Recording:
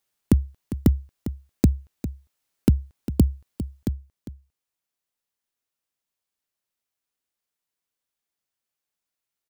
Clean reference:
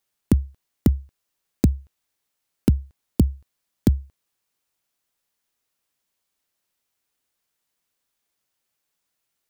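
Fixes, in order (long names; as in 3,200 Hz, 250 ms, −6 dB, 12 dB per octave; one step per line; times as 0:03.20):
echo removal 402 ms −12.5 dB
level correction +8.5 dB, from 0:03.85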